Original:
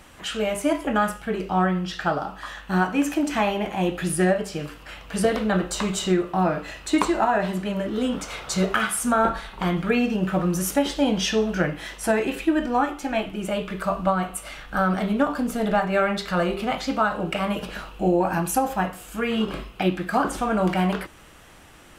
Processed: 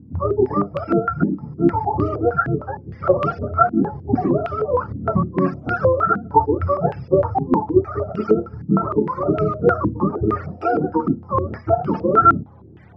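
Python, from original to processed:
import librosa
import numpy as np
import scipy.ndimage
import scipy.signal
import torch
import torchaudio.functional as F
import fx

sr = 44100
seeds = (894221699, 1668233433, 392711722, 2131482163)

y = fx.octave_mirror(x, sr, pivot_hz=500.0)
y = fx.stretch_vocoder(y, sr, factor=0.59)
y = fx.filter_held_lowpass(y, sr, hz=6.5, low_hz=260.0, high_hz=2700.0)
y = F.gain(torch.from_numpy(y), 3.0).numpy()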